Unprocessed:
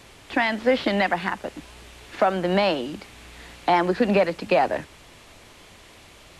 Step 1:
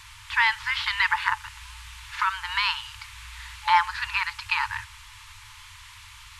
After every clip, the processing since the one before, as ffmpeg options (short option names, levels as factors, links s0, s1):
-af "afftfilt=real='re*(1-between(b*sr/4096,110,860))':imag='im*(1-between(b*sr/4096,110,860))':win_size=4096:overlap=0.75,volume=1.5"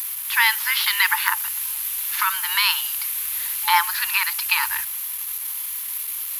-af "aemphasis=mode=production:type=riaa,aexciter=amount=8.3:drive=8:freq=11000,anlmdn=25.1,volume=1.12"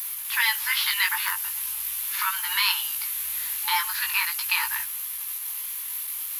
-filter_complex "[0:a]acrossover=split=380|2200[s0][s1][s2];[s1]alimiter=limit=0.158:level=0:latency=1:release=208[s3];[s0][s3][s2]amix=inputs=3:normalize=0,flanger=delay=15.5:depth=4.8:speed=0.4"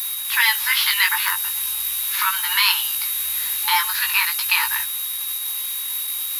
-af "aeval=exprs='val(0)+0.0126*sin(2*PI*3800*n/s)':c=same,volume=1.88"